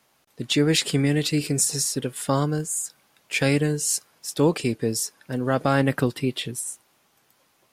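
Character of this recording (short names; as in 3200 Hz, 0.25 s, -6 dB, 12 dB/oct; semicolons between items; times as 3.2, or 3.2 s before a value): noise floor -65 dBFS; spectral tilt -4.0 dB/oct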